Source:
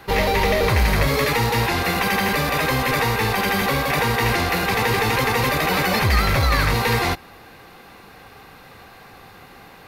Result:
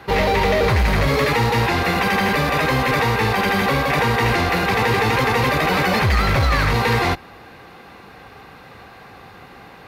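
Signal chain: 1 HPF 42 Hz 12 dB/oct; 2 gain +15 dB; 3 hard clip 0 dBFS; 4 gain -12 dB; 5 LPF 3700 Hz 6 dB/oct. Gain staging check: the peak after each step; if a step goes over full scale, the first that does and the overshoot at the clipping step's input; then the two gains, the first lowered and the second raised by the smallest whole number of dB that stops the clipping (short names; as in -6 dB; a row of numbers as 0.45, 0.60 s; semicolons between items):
-6.5, +8.5, 0.0, -12.0, -12.0 dBFS; step 2, 8.5 dB; step 2 +6 dB, step 4 -3 dB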